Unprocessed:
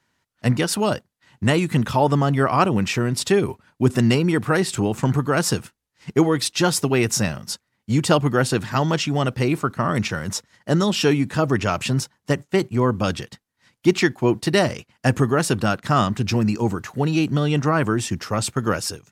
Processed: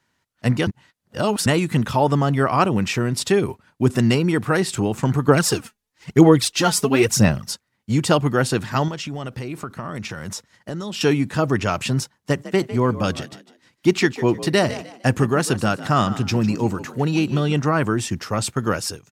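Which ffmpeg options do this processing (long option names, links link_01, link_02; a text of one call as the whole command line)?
ffmpeg -i in.wav -filter_complex "[0:a]asettb=1/sr,asplit=3[link_01][link_02][link_03];[link_01]atrim=end=5.284[link_04];[link_02]atrim=start=5.28:end=7.51,asetpts=PTS-STARTPTS,afade=type=in:duration=0.004:curve=qsin,afade=type=out:start_time=2.226:duration=0.004:curve=qsin,aphaser=in_gain=1:out_gain=1:delay=4.9:decay=0.62:speed=1:type=sinusoidal[link_05];[link_03]atrim=start=7.506[link_06];[link_04][link_05]acrossfade=duration=0.004:curve1=hsin:curve2=qsin[link_07];[link_07][link_06]acrossfade=duration=0.004:curve1=qsin:curve2=hsin,asettb=1/sr,asplit=3[link_08][link_09][link_10];[link_08]atrim=end=8.884[link_11];[link_09]atrim=start=8.88:end=11.01,asetpts=PTS-STARTPTS,afade=type=in:duration=0.004:curve=qsin,afade=type=out:start_time=2.126:duration=0.004:curve=qsin,acompressor=threshold=-26dB:ratio=6:attack=3.2:release=140:knee=1:detection=peak[link_12];[link_10]atrim=start=11.006[link_13];[link_11][link_12]acrossfade=duration=0.004:curve1=hsin:curve2=qsin[link_14];[link_14][link_13]acrossfade=duration=0.004:curve1=qsin:curve2=hsin,asplit=3[link_15][link_16][link_17];[link_15]afade=type=out:start_time=12.32:duration=0.02[link_18];[link_16]asplit=4[link_19][link_20][link_21][link_22];[link_20]adelay=152,afreqshift=54,volume=-15dB[link_23];[link_21]adelay=304,afreqshift=108,volume=-25.2dB[link_24];[link_22]adelay=456,afreqshift=162,volume=-35.3dB[link_25];[link_19][link_23][link_24][link_25]amix=inputs=4:normalize=0,afade=type=in:start_time=12.32:duration=0.02,afade=type=out:start_time=17.52:duration=0.02[link_26];[link_17]afade=type=in:start_time=17.52:duration=0.02[link_27];[link_18][link_26][link_27]amix=inputs=3:normalize=0,asplit=3[link_28][link_29][link_30];[link_28]atrim=end=0.672[link_31];[link_29]atrim=start=0.668:end=1.462,asetpts=PTS-STARTPTS,areverse[link_32];[link_30]atrim=start=1.458[link_33];[link_31][link_32]acrossfade=duration=0.004:curve1=hsin:curve2=hsin[link_34];[link_34][link_33]acrossfade=duration=0.004:curve1=hsin:curve2=hsin" out.wav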